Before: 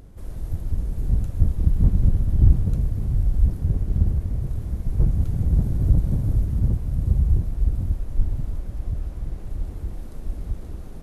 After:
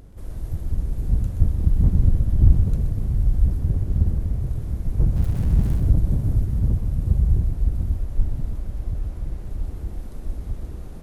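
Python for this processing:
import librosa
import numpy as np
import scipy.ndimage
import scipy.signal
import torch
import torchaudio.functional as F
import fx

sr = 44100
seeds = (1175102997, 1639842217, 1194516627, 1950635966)

y = fx.zero_step(x, sr, step_db=-32.5, at=(5.16, 5.8))
y = y + 10.0 ** (-8.5 / 20.0) * np.pad(y, (int(126 * sr / 1000.0), 0))[:len(y)]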